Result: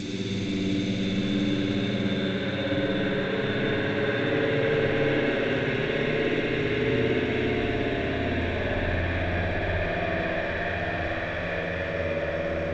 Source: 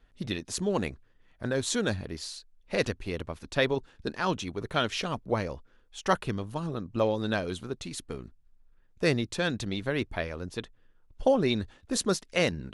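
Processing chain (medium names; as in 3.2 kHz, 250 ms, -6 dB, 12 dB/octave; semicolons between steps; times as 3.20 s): Paulstretch 19×, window 0.50 s, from 9.67 s; spring tank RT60 3.1 s, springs 58 ms, chirp 65 ms, DRR -4 dB; G.722 64 kbps 16 kHz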